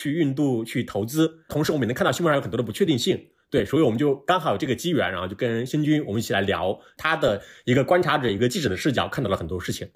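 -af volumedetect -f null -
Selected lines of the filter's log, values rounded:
mean_volume: -23.2 dB
max_volume: -7.5 dB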